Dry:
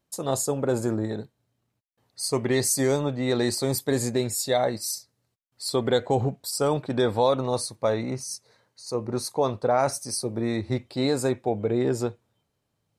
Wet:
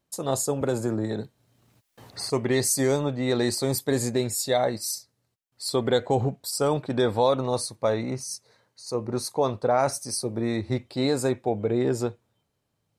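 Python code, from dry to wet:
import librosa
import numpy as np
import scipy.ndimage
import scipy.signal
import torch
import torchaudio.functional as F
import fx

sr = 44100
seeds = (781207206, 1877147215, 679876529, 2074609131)

y = fx.band_squash(x, sr, depth_pct=70, at=(0.61, 2.3))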